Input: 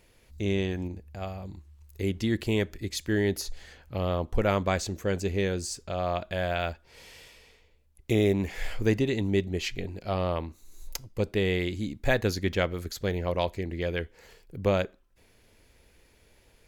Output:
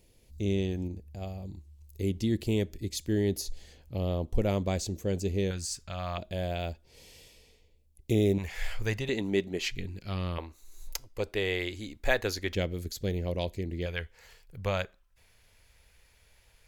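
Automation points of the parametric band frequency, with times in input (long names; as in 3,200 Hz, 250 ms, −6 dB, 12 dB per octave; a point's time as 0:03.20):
parametric band −14.5 dB 1.6 octaves
1,400 Hz
from 0:05.51 420 Hz
from 0:06.18 1,400 Hz
from 0:08.38 280 Hz
from 0:09.09 77 Hz
from 0:09.71 660 Hz
from 0:10.38 160 Hz
from 0:12.55 1,200 Hz
from 0:13.86 300 Hz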